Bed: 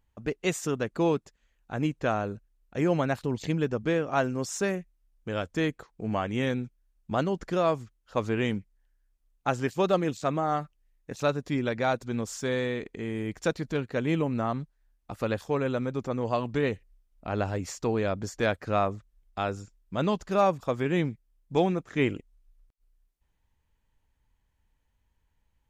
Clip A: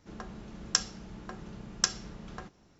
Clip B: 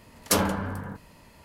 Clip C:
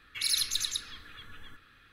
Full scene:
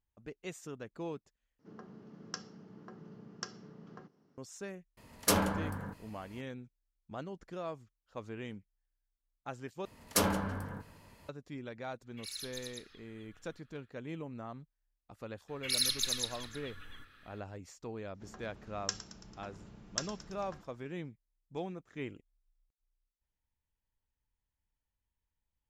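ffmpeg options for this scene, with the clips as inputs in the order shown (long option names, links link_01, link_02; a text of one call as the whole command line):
ffmpeg -i bed.wav -i cue0.wav -i cue1.wav -i cue2.wav -filter_complex "[1:a]asplit=2[link_01][link_02];[2:a]asplit=2[link_03][link_04];[3:a]asplit=2[link_05][link_06];[0:a]volume=-15.5dB[link_07];[link_01]highpass=frequency=110:width=0.5412,highpass=frequency=110:width=1.3066,equalizer=frequency=160:width_type=q:width=4:gain=7,equalizer=frequency=260:width_type=q:width=4:gain=9,equalizer=frequency=430:width_type=q:width=4:gain=9,equalizer=frequency=1200:width_type=q:width=4:gain=3,equalizer=frequency=2400:width_type=q:width=4:gain=-7,equalizer=frequency=3700:width_type=q:width=4:gain=-9,lowpass=frequency=5300:width=0.5412,lowpass=frequency=5300:width=1.3066[link_08];[link_04]asplit=2[link_09][link_10];[link_10]adelay=165,lowpass=frequency=4300:poles=1,volume=-20dB,asplit=2[link_11][link_12];[link_12]adelay=165,lowpass=frequency=4300:poles=1,volume=0.51,asplit=2[link_13][link_14];[link_14]adelay=165,lowpass=frequency=4300:poles=1,volume=0.51,asplit=2[link_15][link_16];[link_16]adelay=165,lowpass=frequency=4300:poles=1,volume=0.51[link_17];[link_09][link_11][link_13][link_15][link_17]amix=inputs=5:normalize=0[link_18];[link_06]aecho=1:1:317:0.141[link_19];[link_02]asplit=7[link_20][link_21][link_22][link_23][link_24][link_25][link_26];[link_21]adelay=111,afreqshift=-65,volume=-14.5dB[link_27];[link_22]adelay=222,afreqshift=-130,volume=-19.2dB[link_28];[link_23]adelay=333,afreqshift=-195,volume=-24dB[link_29];[link_24]adelay=444,afreqshift=-260,volume=-28.7dB[link_30];[link_25]adelay=555,afreqshift=-325,volume=-33.4dB[link_31];[link_26]adelay=666,afreqshift=-390,volume=-38.2dB[link_32];[link_20][link_27][link_28][link_29][link_30][link_31][link_32]amix=inputs=7:normalize=0[link_33];[link_07]asplit=3[link_34][link_35][link_36];[link_34]atrim=end=1.594[link_37];[link_08]atrim=end=2.79,asetpts=PTS-STARTPTS,volume=-11dB[link_38];[link_35]atrim=start=4.376:end=9.854[link_39];[link_18]atrim=end=1.44,asetpts=PTS-STARTPTS,volume=-6dB[link_40];[link_36]atrim=start=11.286[link_41];[link_03]atrim=end=1.44,asetpts=PTS-STARTPTS,volume=-5dB,afade=type=in:duration=0.004:curve=hsin,afade=type=out:start_time=1.436:duration=0.004:curve=hsin,adelay=219177S[link_42];[link_05]atrim=end=1.92,asetpts=PTS-STARTPTS,volume=-15.5dB,afade=type=in:duration=0.1,afade=type=out:start_time=1.82:duration=0.1,adelay=12020[link_43];[link_19]atrim=end=1.92,asetpts=PTS-STARTPTS,volume=-2.5dB,afade=type=in:duration=0.004:curve=hsin,afade=type=out:start_time=1.916:duration=0.004:curve=hsin,adelay=15480[link_44];[link_33]atrim=end=2.79,asetpts=PTS-STARTPTS,volume=-9.5dB,afade=type=in:duration=0.004:curve=hsin,afade=type=out:start_time=2.786:duration=0.004:curve=hsin,adelay=18140[link_45];[link_37][link_38]acrossfade=duration=0.004:curve1=hsin:curve2=hsin[link_46];[link_46][link_39]acrossfade=duration=0.004:curve1=hsin:curve2=hsin[link_47];[link_47][link_40]acrossfade=duration=0.004:curve1=hsin:curve2=hsin[link_48];[link_48][link_41]acrossfade=duration=0.004:curve1=hsin:curve2=hsin[link_49];[link_49][link_42][link_43][link_44][link_45]amix=inputs=5:normalize=0" out.wav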